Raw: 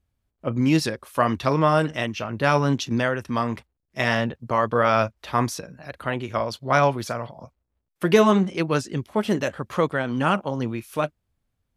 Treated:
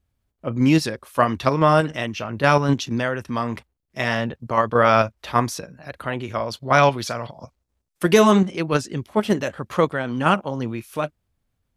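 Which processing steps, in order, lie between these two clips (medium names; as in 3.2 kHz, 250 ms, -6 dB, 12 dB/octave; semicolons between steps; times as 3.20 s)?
6.77–8.45 s: peaking EQ 3.2 kHz -> 11 kHz +7 dB 1.7 oct; in parallel at -0.5 dB: level held to a coarse grid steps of 20 dB; on the sum: trim -1.5 dB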